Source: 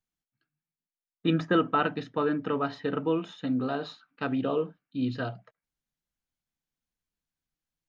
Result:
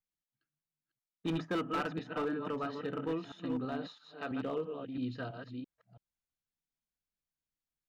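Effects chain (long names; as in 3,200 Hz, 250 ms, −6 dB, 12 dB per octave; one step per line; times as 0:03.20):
delay that plays each chunk backwards 332 ms, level −6 dB
0:03.88–0:04.31: low-shelf EQ 290 Hz −8.5 dB
gain into a clipping stage and back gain 20.5 dB
level −8 dB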